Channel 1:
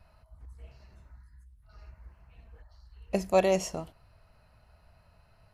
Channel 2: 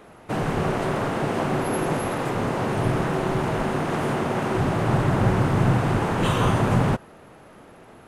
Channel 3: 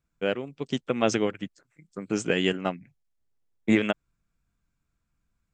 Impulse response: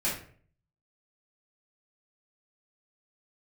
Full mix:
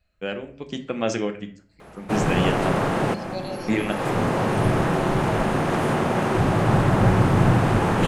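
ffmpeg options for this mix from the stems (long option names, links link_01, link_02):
-filter_complex "[0:a]lowpass=frequency=4500:width_type=q:width=5.6,asplit=2[link_01][link_02];[link_02]afreqshift=-0.48[link_03];[link_01][link_03]amix=inputs=2:normalize=1,volume=-11dB,asplit=3[link_04][link_05][link_06];[link_05]volume=-13dB[link_07];[1:a]adelay=1800,volume=2dB,asplit=2[link_08][link_09];[link_09]volume=-20.5dB[link_10];[2:a]volume=-2.5dB,asplit=2[link_11][link_12];[link_12]volume=-13dB[link_13];[link_06]apad=whole_len=435493[link_14];[link_08][link_14]sidechaincompress=threshold=-53dB:ratio=8:attack=7.5:release=332[link_15];[3:a]atrim=start_sample=2205[link_16];[link_07][link_10][link_13]amix=inputs=3:normalize=0[link_17];[link_17][link_16]afir=irnorm=-1:irlink=0[link_18];[link_04][link_15][link_11][link_18]amix=inputs=4:normalize=0"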